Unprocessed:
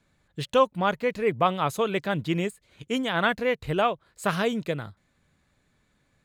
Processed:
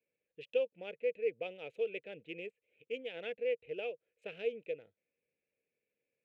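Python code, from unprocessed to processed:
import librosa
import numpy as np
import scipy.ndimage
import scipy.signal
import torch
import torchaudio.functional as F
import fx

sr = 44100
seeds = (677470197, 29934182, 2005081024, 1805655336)

y = fx.wiener(x, sr, points=9)
y = fx.double_bandpass(y, sr, hz=1100.0, octaves=2.4)
y = y * 10.0 ** (-5.5 / 20.0)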